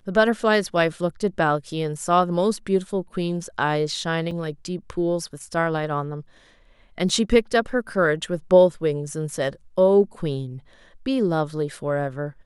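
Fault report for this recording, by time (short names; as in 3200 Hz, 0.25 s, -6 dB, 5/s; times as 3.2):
4.31 gap 3.7 ms
7.09 gap 2.4 ms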